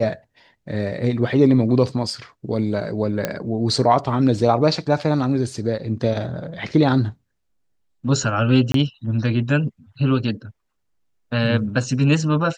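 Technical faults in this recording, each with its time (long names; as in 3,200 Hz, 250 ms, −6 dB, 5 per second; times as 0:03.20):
0:03.25: click −7 dBFS
0:08.72–0:08.74: drop-out 23 ms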